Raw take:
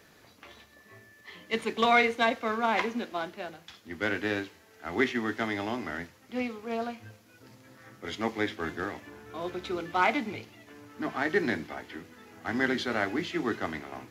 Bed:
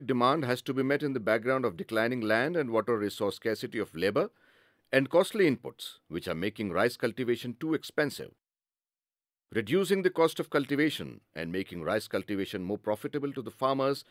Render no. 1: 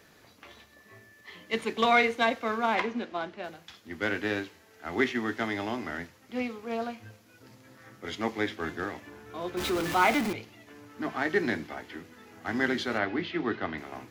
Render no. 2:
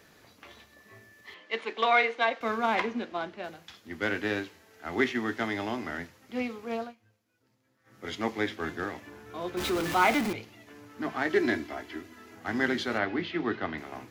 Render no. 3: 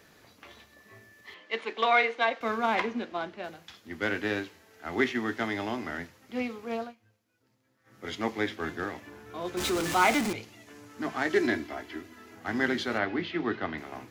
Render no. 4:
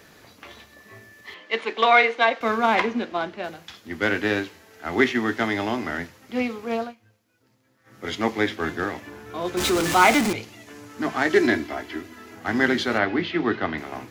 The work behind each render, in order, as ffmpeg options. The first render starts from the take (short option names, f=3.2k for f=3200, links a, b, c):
-filter_complex "[0:a]asettb=1/sr,asplit=3[a][b][c];[a]atrim=end=2.754[d];[b]atrim=start=2.75:end=3.44,asetpts=PTS-STARTPTS,afade=t=in:d=0.004:c=qsin,afade=t=out:st=0.686:d=0.004:c=qsin,adynamicsmooth=sensitivity=2.5:basefreq=5.4k[e];[c]atrim=start=3.436[f];[d][e]acrossfade=d=0.004:c1=hsin:c2=qsin[g];[g][f]acrossfade=d=0.004:c1=qsin:c2=hsin,asettb=1/sr,asplit=3[h][i][j];[h]atrim=end=9.574[k];[i]atrim=start=9.57:end=10.33,asetpts=PTS-STARTPTS,afade=t=in:d=0.004:c=qsin,afade=t=out:st=0.756:d=0.004:c=qsin,aeval=exprs='val(0)+0.5*0.0376*sgn(val(0))':c=same[l];[j]atrim=start=10.326[m];[k][l]acrossfade=d=0.004:c1=hsin:c2=qsin[n];[n][m]acrossfade=d=0.004:c1=qsin:c2=hsin,asettb=1/sr,asplit=3[o][p][q];[o]atrim=end=12.984[r];[p]atrim=start=12.98:end=13.78,asetpts=PTS-STARTPTS,afade=t=in:d=0.004:c=qsin,afade=t=out:st=0.796:d=0.004:c=qsin,lowpass=f=4.3k:w=0.5412,lowpass=f=4.3k:w=1.3066[s];[q]atrim=start=13.776[t];[r][s]acrossfade=d=0.004:c1=hsin:c2=qsin[u];[u][t]acrossfade=d=0.004:c1=qsin:c2=hsin"
-filter_complex "[0:a]asettb=1/sr,asplit=3[a][b][c];[a]atrim=end=1.344[d];[b]atrim=start=1.34:end=2.41,asetpts=PTS-STARTPTS,afade=t=in:d=0.004:c=qsin,afade=t=out:st=1.066:d=0.004:c=qsin,highpass=450,lowpass=4.1k[e];[c]atrim=start=2.406[f];[d][e]acrossfade=d=0.004:c1=hsin:c2=qsin[g];[g][f]acrossfade=d=0.004:c1=qsin:c2=hsin,asettb=1/sr,asplit=3[h][i][j];[h]atrim=end=11.304[k];[i]atrim=start=11.3:end=12.35,asetpts=PTS-STARTPTS,afade=t=in:d=0.004:c=qsin,afade=t=out:st=1.046:d=0.004:c=qsin,aecho=1:1:3:0.65,atrim=end_sample=46305[l];[j]atrim=start=12.346[m];[k][l]acrossfade=d=0.004:c1=hsin:c2=qsin[n];[n][m]acrossfade=d=0.004:c1=qsin:c2=hsin,asplit=3[o][p][q];[o]atrim=end=6.95,asetpts=PTS-STARTPTS,afade=t=out:st=6.75:d=0.2:silence=0.11885[r];[p]atrim=start=6.95:end=7.84,asetpts=PTS-STARTPTS,volume=-18.5dB[s];[q]atrim=start=7.84,asetpts=PTS-STARTPTS,afade=t=in:d=0.2:silence=0.11885[t];[r][s][t]concat=n=3:v=0:a=1"
-filter_complex "[0:a]asettb=1/sr,asplit=3[a][b][c];[a]atrim=end=9.454[d];[b]atrim=start=9.45:end=11.47,asetpts=PTS-STARTPTS,afade=t=in:d=0.004:c=qsin,afade=t=out:st=2.016:d=0.004:c=qsin,equalizer=f=7.6k:w=0.92:g=6.5[e];[c]atrim=start=11.466[f];[d][e]acrossfade=d=0.004:c1=hsin:c2=qsin[g];[g][f]acrossfade=d=0.004:c1=qsin:c2=hsin"
-af "volume=7dB"